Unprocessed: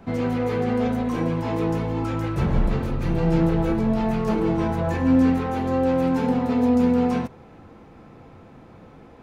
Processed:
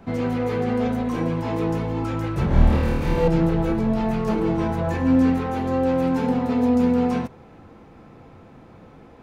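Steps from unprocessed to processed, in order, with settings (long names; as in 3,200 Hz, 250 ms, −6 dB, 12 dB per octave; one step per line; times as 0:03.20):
0:02.48–0:03.28: flutter between parallel walls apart 4.5 metres, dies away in 1.1 s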